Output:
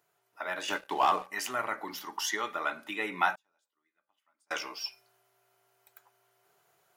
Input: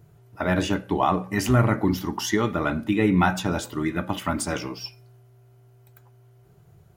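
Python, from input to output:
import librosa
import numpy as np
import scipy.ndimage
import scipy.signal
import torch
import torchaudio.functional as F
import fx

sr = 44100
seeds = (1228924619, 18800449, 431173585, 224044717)

y = scipy.signal.sosfilt(scipy.signal.butter(2, 810.0, 'highpass', fs=sr, output='sos'), x)
y = fx.leveller(y, sr, passes=2, at=(0.68, 1.27))
y = fx.rider(y, sr, range_db=4, speed_s=2.0)
y = fx.gate_flip(y, sr, shuts_db=-32.0, range_db=-42, at=(3.35, 4.51))
y = y * librosa.db_to_amplitude(-4.5)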